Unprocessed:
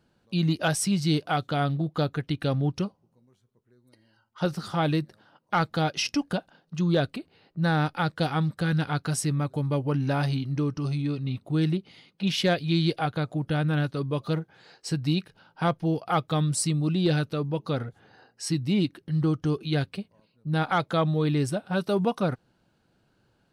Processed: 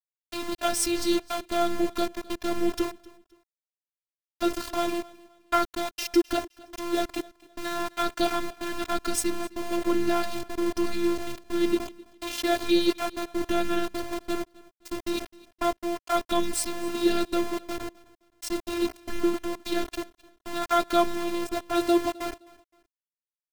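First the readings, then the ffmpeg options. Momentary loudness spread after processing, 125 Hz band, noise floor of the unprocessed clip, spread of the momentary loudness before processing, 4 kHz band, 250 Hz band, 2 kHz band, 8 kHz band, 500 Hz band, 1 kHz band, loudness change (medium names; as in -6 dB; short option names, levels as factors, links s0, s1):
12 LU, -23.0 dB, -69 dBFS, 7 LU, -0.5 dB, -0.5 dB, -2.0 dB, +1.5 dB, +2.0 dB, +1.0 dB, -1.5 dB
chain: -filter_complex "[0:a]lowshelf=f=200:g=9.5,bandreject=f=62.56:t=h:w=4,bandreject=f=125.12:t=h:w=4,bandreject=f=187.68:t=h:w=4,bandreject=f=250.24:t=h:w=4,bandreject=f=312.8:t=h:w=4,bandreject=f=375.36:t=h:w=4,bandreject=f=437.92:t=h:w=4,bandreject=f=500.48:t=h:w=4,bandreject=f=563.04:t=h:w=4,asplit=2[s0][s1];[s1]alimiter=limit=0.106:level=0:latency=1:release=307,volume=1.33[s2];[s0][s2]amix=inputs=2:normalize=0,aeval=exprs='val(0)+0.00708*(sin(2*PI*50*n/s)+sin(2*PI*2*50*n/s)/2+sin(2*PI*3*50*n/s)/3+sin(2*PI*4*50*n/s)/4+sin(2*PI*5*50*n/s)/5)':c=same,tremolo=f=1.1:d=0.65,aeval=exprs='val(0)*gte(abs(val(0)),0.0501)':c=same,afftfilt=real='hypot(re,im)*cos(PI*b)':imag='0':win_size=512:overlap=0.75,aecho=1:1:260|520:0.0794|0.0246,volume=1.26"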